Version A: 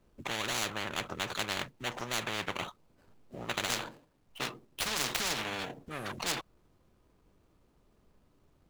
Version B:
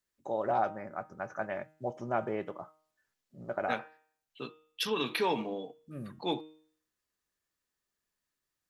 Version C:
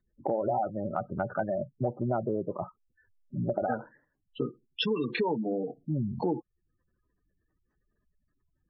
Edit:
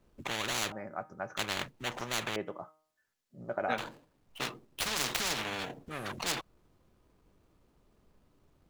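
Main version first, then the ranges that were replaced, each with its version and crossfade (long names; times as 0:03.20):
A
0:00.72–0:01.37: punch in from B
0:02.36–0:03.78: punch in from B
not used: C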